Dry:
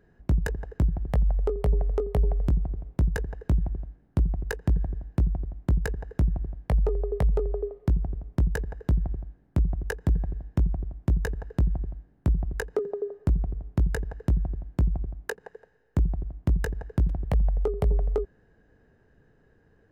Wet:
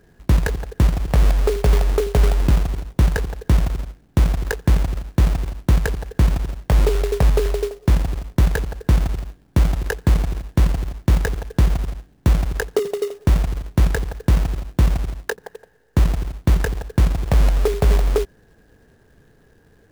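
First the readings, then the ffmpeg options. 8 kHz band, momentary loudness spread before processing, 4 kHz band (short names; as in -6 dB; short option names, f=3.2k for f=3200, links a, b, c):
n/a, 6 LU, +16.5 dB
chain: -af "acrusher=bits=3:mode=log:mix=0:aa=0.000001,volume=7.5dB"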